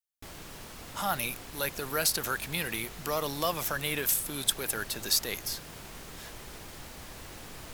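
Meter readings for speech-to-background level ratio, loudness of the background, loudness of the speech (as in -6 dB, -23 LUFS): 14.0 dB, -44.5 LUFS, -30.5 LUFS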